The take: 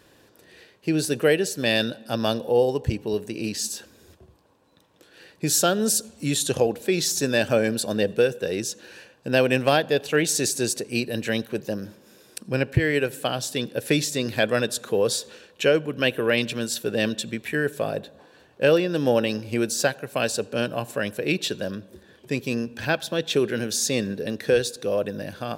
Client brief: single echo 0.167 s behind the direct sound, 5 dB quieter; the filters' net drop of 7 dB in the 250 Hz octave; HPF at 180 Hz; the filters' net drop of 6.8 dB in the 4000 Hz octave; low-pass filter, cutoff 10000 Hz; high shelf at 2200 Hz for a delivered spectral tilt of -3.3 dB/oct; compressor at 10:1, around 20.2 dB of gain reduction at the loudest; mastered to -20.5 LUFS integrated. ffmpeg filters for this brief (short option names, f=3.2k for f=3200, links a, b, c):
-af "highpass=180,lowpass=10k,equalizer=f=250:t=o:g=-8,highshelf=f=2.2k:g=-5.5,equalizer=f=4k:t=o:g=-3.5,acompressor=threshold=-38dB:ratio=10,aecho=1:1:167:0.562,volume=21dB"